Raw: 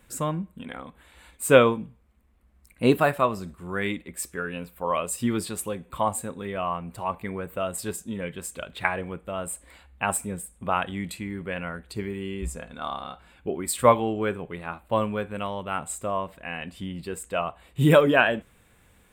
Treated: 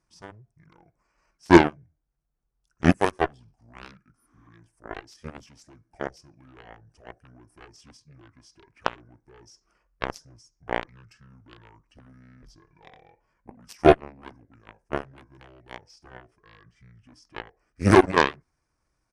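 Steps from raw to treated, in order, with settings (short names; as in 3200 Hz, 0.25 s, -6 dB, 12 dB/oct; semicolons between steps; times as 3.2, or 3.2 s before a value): added harmonics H 7 -16 dB, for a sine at -3 dBFS; pitch shift -7.5 st; spectral repair 4.19–4.45, 220–9200 Hz both; gain +2.5 dB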